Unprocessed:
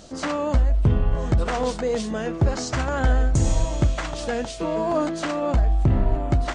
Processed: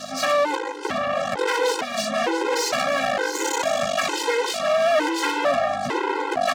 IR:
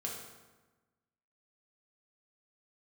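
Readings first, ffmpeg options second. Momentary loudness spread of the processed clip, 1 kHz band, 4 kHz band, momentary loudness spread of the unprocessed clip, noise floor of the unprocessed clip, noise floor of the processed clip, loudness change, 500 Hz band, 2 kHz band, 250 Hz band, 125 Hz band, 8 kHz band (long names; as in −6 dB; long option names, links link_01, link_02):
4 LU, +7.0 dB, +9.5 dB, 6 LU, −33 dBFS, −30 dBFS, +1.0 dB, +4.5 dB, +8.5 dB, −4.0 dB, −22.5 dB, +6.5 dB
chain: -filter_complex "[0:a]aeval=exprs='max(val(0),0)':channel_layout=same,aeval=exprs='val(0)+0.0126*(sin(2*PI*50*n/s)+sin(2*PI*2*50*n/s)/2+sin(2*PI*3*50*n/s)/3+sin(2*PI*4*50*n/s)/4+sin(2*PI*5*50*n/s)/5)':channel_layout=same,asplit=2[link_01][link_02];[link_02]aecho=0:1:665:0.224[link_03];[link_01][link_03]amix=inputs=2:normalize=0,asplit=2[link_04][link_05];[link_05]highpass=frequency=720:poles=1,volume=30dB,asoftclip=type=tanh:threshold=-8.5dB[link_06];[link_04][link_06]amix=inputs=2:normalize=0,lowpass=frequency=4100:poles=1,volume=-6dB,highpass=330,afftfilt=real='re*gt(sin(2*PI*1.1*pts/sr)*(1-2*mod(floor(b*sr/1024/270),2)),0)':imag='im*gt(sin(2*PI*1.1*pts/sr)*(1-2*mod(floor(b*sr/1024/270),2)),0)':win_size=1024:overlap=0.75"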